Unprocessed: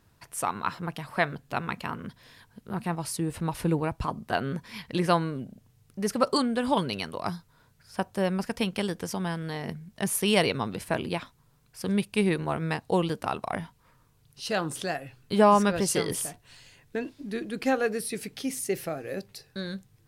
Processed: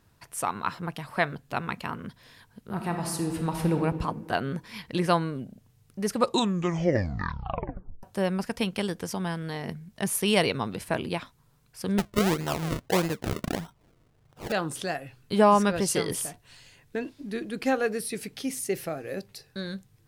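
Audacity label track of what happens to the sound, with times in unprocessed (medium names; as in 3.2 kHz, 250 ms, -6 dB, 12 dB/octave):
2.690000	3.800000	reverb throw, RT60 1.6 s, DRR 3.5 dB
6.120000	6.120000	tape stop 1.91 s
11.980000	14.520000	decimation with a swept rate 37× 1.6 Hz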